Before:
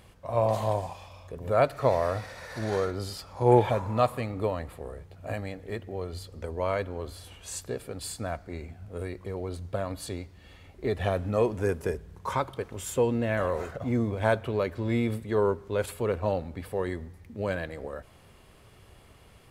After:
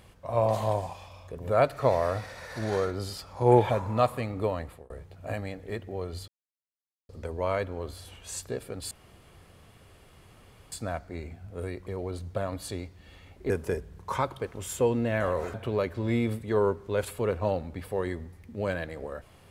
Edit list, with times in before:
4.56–4.9 fade out equal-power
6.28 insert silence 0.81 s
8.1 insert room tone 1.81 s
10.88–11.67 cut
13.71–14.35 cut

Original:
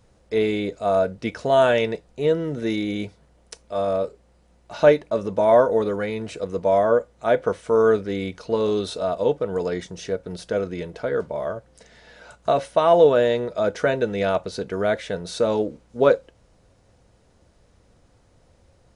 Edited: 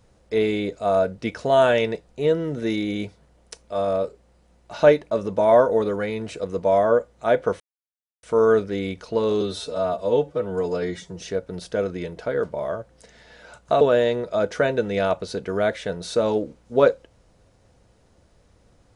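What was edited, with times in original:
7.6 insert silence 0.63 s
8.78–9.98 stretch 1.5×
12.58–13.05 cut

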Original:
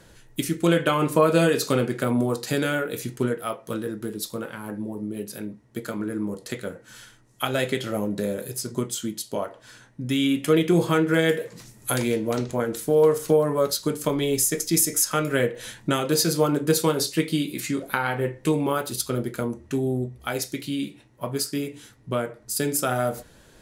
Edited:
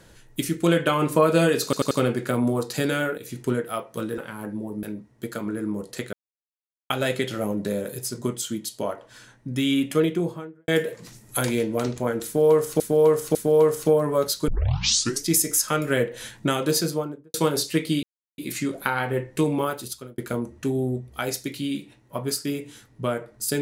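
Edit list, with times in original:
1.64 stutter 0.09 s, 4 plays
2.91–3.17 fade in, from -13.5 dB
3.91–4.43 cut
5.08–5.36 cut
6.66–7.43 mute
10.31–11.21 studio fade out
12.78–13.33 loop, 3 plays
13.91 tape start 0.79 s
16.1–16.77 studio fade out
17.46 insert silence 0.35 s
18.67–19.26 fade out

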